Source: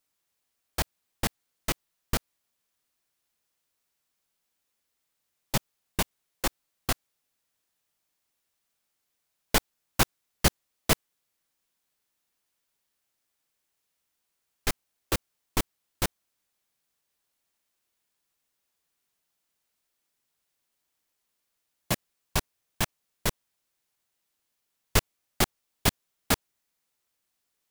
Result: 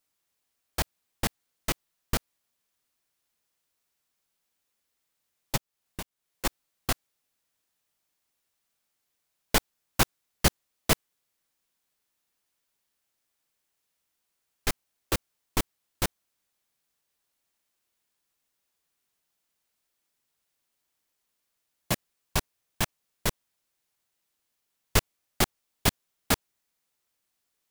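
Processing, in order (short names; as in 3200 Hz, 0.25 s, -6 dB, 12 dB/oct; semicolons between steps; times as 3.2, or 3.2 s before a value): 5.56–6.45 compressor 2.5:1, threshold -40 dBFS, peak gain reduction 12 dB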